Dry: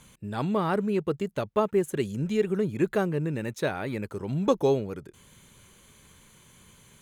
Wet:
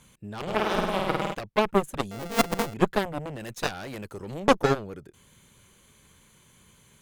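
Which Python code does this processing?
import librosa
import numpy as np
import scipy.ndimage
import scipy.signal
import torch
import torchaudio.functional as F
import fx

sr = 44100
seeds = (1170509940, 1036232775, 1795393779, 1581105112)

y = fx.sample_sort(x, sr, block=64, at=(2.11, 2.74))
y = fx.high_shelf(y, sr, hz=2800.0, db=6.5, at=(3.4, 4.4))
y = fx.cheby_harmonics(y, sr, harmonics=(3, 4, 7), levels_db=(-19, -17, -16), full_scale_db=-9.5)
y = fx.room_flutter(y, sr, wall_m=8.7, rt60_s=1.3, at=(0.46, 1.33), fade=0.02)
y = F.gain(torch.from_numpy(y), 4.5).numpy()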